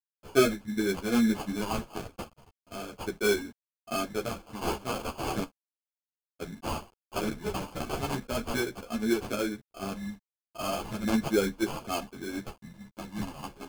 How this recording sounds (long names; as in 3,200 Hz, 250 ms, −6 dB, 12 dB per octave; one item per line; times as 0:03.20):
a quantiser's noise floor 10 bits, dither none
phaser sweep stages 2, 0.36 Hz, lowest notch 430–2,100 Hz
aliases and images of a low sample rate 1,900 Hz, jitter 0%
a shimmering, thickened sound